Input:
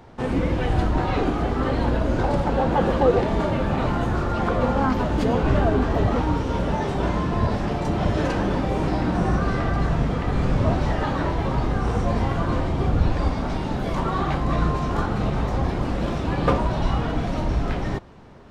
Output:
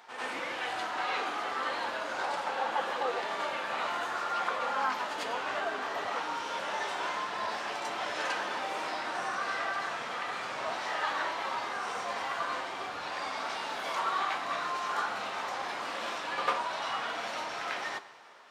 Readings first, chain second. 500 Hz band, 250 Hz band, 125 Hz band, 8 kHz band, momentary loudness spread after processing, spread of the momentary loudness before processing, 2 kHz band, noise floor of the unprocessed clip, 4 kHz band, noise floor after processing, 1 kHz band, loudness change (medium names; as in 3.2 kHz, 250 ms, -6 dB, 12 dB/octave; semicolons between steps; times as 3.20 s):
-13.5 dB, -24.5 dB, -37.5 dB, no reading, 4 LU, 4 LU, -0.5 dB, -27 dBFS, 0.0 dB, -38 dBFS, -5.0 dB, -10.0 dB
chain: flange 0.11 Hz, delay 8.6 ms, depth 2.1 ms, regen -65%; in parallel at +2.5 dB: gain riding 0.5 s; on the sum: high-pass 1.1 kHz 12 dB/octave; on a send: reverse echo 96 ms -7.5 dB; on the sum: Schroeder reverb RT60 1.5 s, combs from 27 ms, DRR 15 dB; trim -4 dB